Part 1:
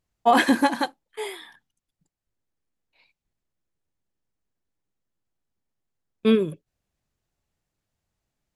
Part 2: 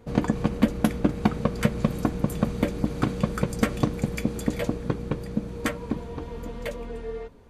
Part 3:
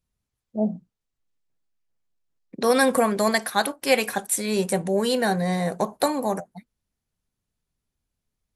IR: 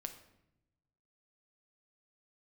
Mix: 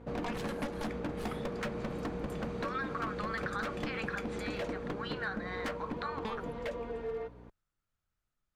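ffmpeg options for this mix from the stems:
-filter_complex "[0:a]acompressor=threshold=-24dB:ratio=12,aeval=exprs='0.2*(cos(1*acos(clip(val(0)/0.2,-1,1)))-cos(1*PI/2))+0.0631*(cos(7*acos(clip(val(0)/0.2,-1,1)))-cos(7*PI/2))':channel_layout=same,volume=-12dB[link_01];[1:a]aeval=exprs='val(0)+0.00708*(sin(2*PI*60*n/s)+sin(2*PI*2*60*n/s)/2+sin(2*PI*3*60*n/s)/3+sin(2*PI*4*60*n/s)/4+sin(2*PI*5*60*n/s)/5)':channel_layout=same,bandpass=frequency=870:width_type=q:width=0.51:csg=0,volume=31dB,asoftclip=hard,volume=-31dB,volume=0.5dB[link_02];[2:a]lowpass=frequency=4000:width=0.5412,lowpass=frequency=4000:width=1.3066,alimiter=limit=-18dB:level=0:latency=1:release=17,highpass=frequency=1300:width_type=q:width=6.1,volume=-9.5dB[link_03];[link_01][link_02][link_03]amix=inputs=3:normalize=0,lowshelf=frequency=65:gain=10.5,acompressor=threshold=-34dB:ratio=2.5"

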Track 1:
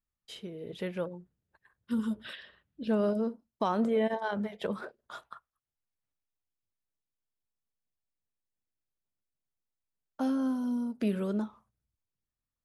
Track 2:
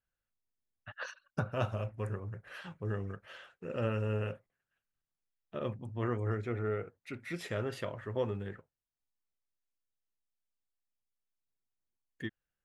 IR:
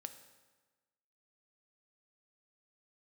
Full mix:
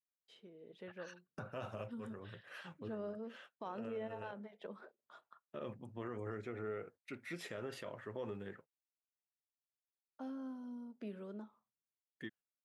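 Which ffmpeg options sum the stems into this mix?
-filter_complex "[0:a]highpass=210,aemphasis=mode=reproduction:type=50fm,volume=-14.5dB,asplit=2[link_01][link_02];[1:a]agate=range=-23dB:threshold=-53dB:ratio=16:detection=peak,highpass=170,volume=-4dB[link_03];[link_02]apad=whole_len=557509[link_04];[link_03][link_04]sidechaincompress=threshold=-53dB:ratio=10:attack=11:release=122[link_05];[link_01][link_05]amix=inputs=2:normalize=0,alimiter=level_in=10dB:limit=-24dB:level=0:latency=1:release=49,volume=-10dB"

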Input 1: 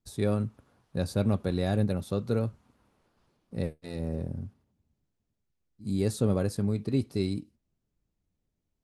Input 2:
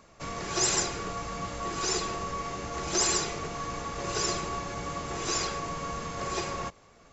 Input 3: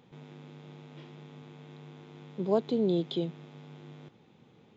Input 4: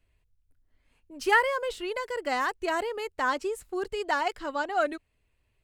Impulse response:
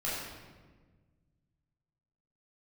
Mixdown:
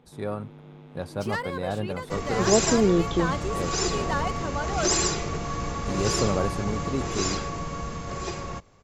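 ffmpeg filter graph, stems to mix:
-filter_complex "[0:a]equalizer=frequency=980:width_type=o:width=1.9:gain=13.5,volume=-8.5dB[link_01];[1:a]lowshelf=frequency=250:gain=9,adelay=1900,volume=-3dB[link_02];[2:a]lowpass=frequency=1700:poles=1,volume=2.5dB[link_03];[3:a]asoftclip=type=tanh:threshold=-20.5dB,volume=-6dB[link_04];[link_01][link_02][link_03][link_04]amix=inputs=4:normalize=0,dynaudnorm=framelen=390:gausssize=11:maxgain=5dB"

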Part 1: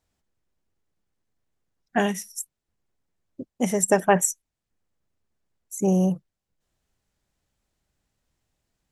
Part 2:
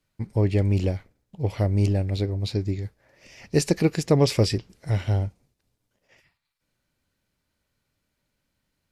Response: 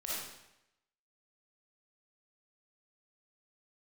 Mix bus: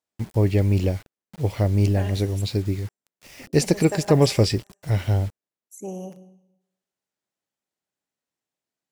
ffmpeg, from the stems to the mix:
-filter_complex "[0:a]highpass=240,volume=-10.5dB,asplit=2[link_01][link_02];[link_02]volume=-12.5dB[link_03];[1:a]acrusher=bits=7:mix=0:aa=0.000001,volume=2dB,asplit=2[link_04][link_05];[link_05]apad=whole_len=392958[link_06];[link_01][link_06]sidechaincompress=threshold=-21dB:ratio=8:attack=16:release=123[link_07];[2:a]atrim=start_sample=2205[link_08];[link_03][link_08]afir=irnorm=-1:irlink=0[link_09];[link_07][link_04][link_09]amix=inputs=3:normalize=0"

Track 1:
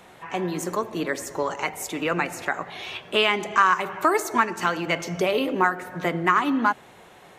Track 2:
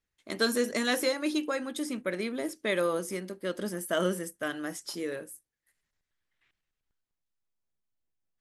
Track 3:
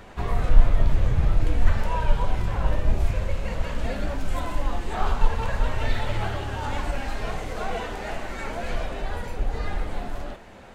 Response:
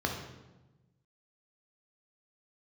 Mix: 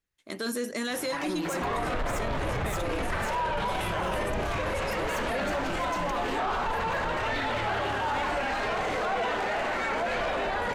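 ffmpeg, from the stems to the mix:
-filter_complex "[0:a]acompressor=threshold=-31dB:ratio=5,asoftclip=type=tanh:threshold=-37dB,adelay=900,volume=0.5dB[link_01];[1:a]volume=-7.5dB[link_02];[2:a]asplit=2[link_03][link_04];[link_04]highpass=frequency=720:poles=1,volume=28dB,asoftclip=type=tanh:threshold=-2dB[link_05];[link_03][link_05]amix=inputs=2:normalize=0,lowpass=frequency=2100:poles=1,volume=-6dB,adelay=1450,volume=-13dB[link_06];[link_01][link_02][link_06]amix=inputs=3:normalize=0,acontrast=77,alimiter=limit=-22.5dB:level=0:latency=1:release=12"

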